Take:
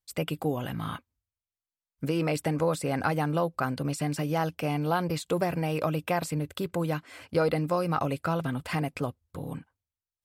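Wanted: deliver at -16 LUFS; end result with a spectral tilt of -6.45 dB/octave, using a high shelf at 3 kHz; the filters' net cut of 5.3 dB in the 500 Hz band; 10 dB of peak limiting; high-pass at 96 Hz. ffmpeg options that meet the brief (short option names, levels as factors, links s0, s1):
-af "highpass=96,equalizer=f=500:t=o:g=-6,highshelf=f=3000:g=-8,volume=9.44,alimiter=limit=0.531:level=0:latency=1"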